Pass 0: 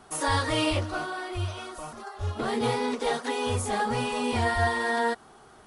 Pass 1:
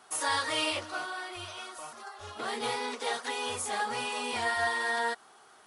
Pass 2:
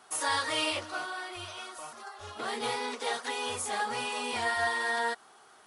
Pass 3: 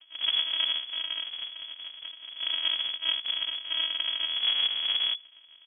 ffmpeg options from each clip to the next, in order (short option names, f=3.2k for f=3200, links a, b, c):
-af "highpass=f=1.1k:p=1"
-af anull
-af "aresample=11025,acrusher=samples=34:mix=1:aa=0.000001,aresample=44100,asoftclip=type=tanh:threshold=-22dB,lowpass=f=2.9k:t=q:w=0.5098,lowpass=f=2.9k:t=q:w=0.6013,lowpass=f=2.9k:t=q:w=0.9,lowpass=f=2.9k:t=q:w=2.563,afreqshift=-3400,volume=4dB"